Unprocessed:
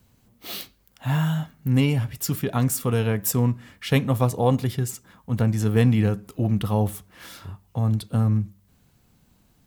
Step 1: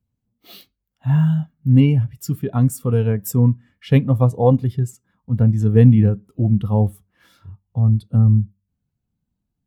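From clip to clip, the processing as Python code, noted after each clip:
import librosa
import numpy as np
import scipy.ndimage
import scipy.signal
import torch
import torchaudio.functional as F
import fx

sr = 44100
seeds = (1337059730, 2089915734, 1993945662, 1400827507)

y = fx.spectral_expand(x, sr, expansion=1.5)
y = y * 10.0 ** (6.5 / 20.0)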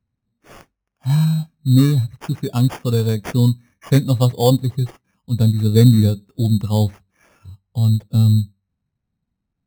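y = fx.sample_hold(x, sr, seeds[0], rate_hz=4000.0, jitter_pct=0)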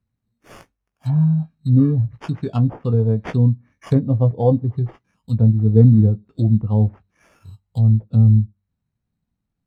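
y = fx.env_lowpass_down(x, sr, base_hz=710.0, full_db=-14.5)
y = fx.doubler(y, sr, ms=18.0, db=-10.0)
y = y * 10.0 ** (-1.0 / 20.0)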